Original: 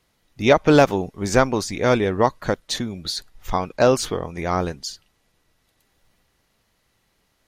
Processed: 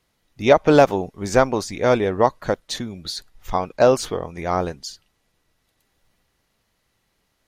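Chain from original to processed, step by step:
dynamic equaliser 650 Hz, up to +5 dB, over −28 dBFS, Q 0.92
level −2.5 dB

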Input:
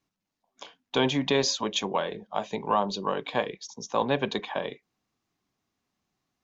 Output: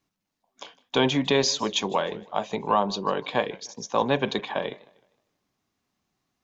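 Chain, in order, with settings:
feedback echo with a swinging delay time 154 ms, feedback 35%, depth 126 cents, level −22 dB
level +2.5 dB

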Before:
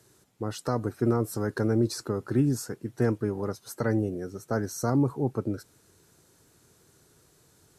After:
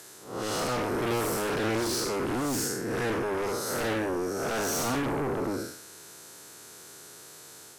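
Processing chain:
spectrum smeared in time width 209 ms
high-pass filter 700 Hz 6 dB per octave
in parallel at −11.5 dB: sine wavefolder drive 17 dB, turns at −24 dBFS
on the sum: level +5.5 dB

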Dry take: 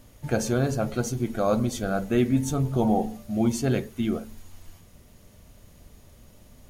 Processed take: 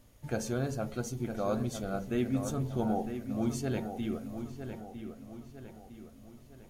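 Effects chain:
0:01.07–0:02.00: notch filter 1,600 Hz, Q 6.6
delay with a low-pass on its return 956 ms, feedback 45%, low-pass 3,200 Hz, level −8.5 dB
level −8.5 dB

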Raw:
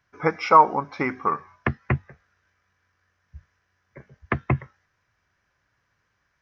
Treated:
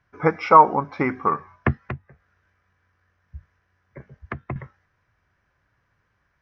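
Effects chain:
low-pass filter 2,100 Hz 6 dB per octave
low-shelf EQ 140 Hz +4 dB
0:01.77–0:04.56: downward compressor 3 to 1, threshold −36 dBFS, peak gain reduction 15.5 dB
level +3 dB

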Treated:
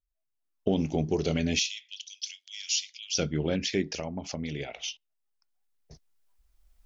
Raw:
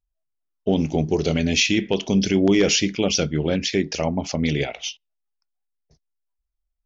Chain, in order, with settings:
camcorder AGC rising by 12 dB per second
0:01.59–0:03.17: inverse Chebyshev high-pass filter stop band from 530 Hz, stop band 80 dB
0:03.82–0:04.88: downward compressor 3 to 1, threshold −26 dBFS, peak gain reduction 7.5 dB
level −6.5 dB

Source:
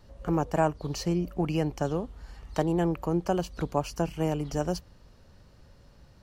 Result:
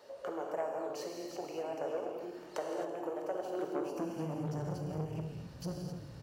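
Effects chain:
delay that plays each chunk backwards 578 ms, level −5 dB
dynamic equaliser 4,800 Hz, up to −6 dB, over −53 dBFS, Q 0.78
downward compressor 6 to 1, threshold −40 dBFS, peak gain reduction 19.5 dB
high-pass filter sweep 510 Hz → 140 Hz, 0:03.36–0:04.55
echo with shifted repeats 166 ms, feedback 43%, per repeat −37 Hz, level −13.5 dB
reverb whose tail is shaped and stops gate 290 ms flat, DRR 0.5 dB
saturating transformer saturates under 540 Hz
level +1 dB

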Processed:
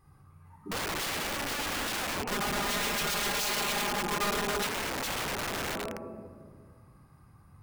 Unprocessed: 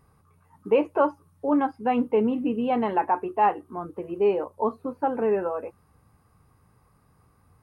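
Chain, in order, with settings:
rectangular room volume 2,400 cubic metres, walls mixed, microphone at 3.9 metres
downward compressor 8 to 1, threshold −18 dBFS, peak gain reduction 8.5 dB
parametric band 450 Hz −10.5 dB 0.34 octaves
wrap-around overflow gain 24 dB
0:02.31–0:04.67: comb filter 4.9 ms, depth 95%
level −4.5 dB

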